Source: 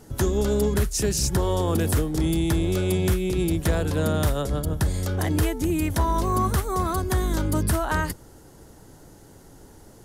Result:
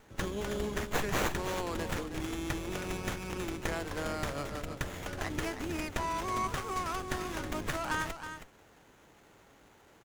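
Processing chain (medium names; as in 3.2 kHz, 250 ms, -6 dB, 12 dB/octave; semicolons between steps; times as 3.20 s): octave divider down 2 oct, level +2 dB; low-pass 7.4 kHz 24 dB/octave; tilt EQ +4 dB/octave; delay 320 ms -9.5 dB; sliding maximum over 9 samples; trim -7.5 dB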